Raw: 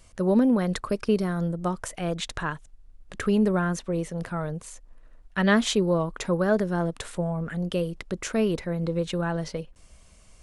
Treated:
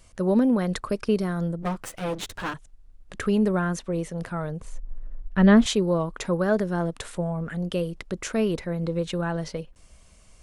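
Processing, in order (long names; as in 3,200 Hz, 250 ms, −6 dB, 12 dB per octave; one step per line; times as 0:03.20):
0:01.62–0:02.54: lower of the sound and its delayed copy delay 9.8 ms
0:04.60–0:05.66: spectral tilt −3 dB per octave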